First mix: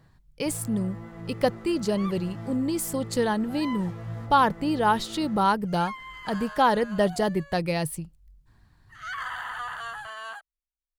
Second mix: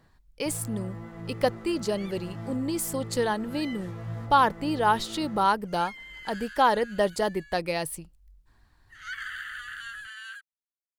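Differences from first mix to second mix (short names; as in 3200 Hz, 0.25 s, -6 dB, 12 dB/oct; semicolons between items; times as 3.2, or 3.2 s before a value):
speech: add bell 140 Hz -11 dB 1.3 oct; second sound: add steep high-pass 1400 Hz 72 dB/oct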